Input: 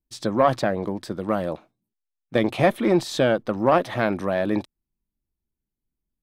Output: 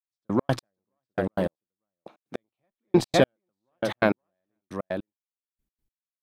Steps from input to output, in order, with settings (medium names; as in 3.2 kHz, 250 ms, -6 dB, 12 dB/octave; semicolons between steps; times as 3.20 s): 1.54–2.36 s: high-pass 230 Hz 12 dB/octave; delay 517 ms -7 dB; trance gate "...x.x..." 153 bpm -60 dB; trim +2 dB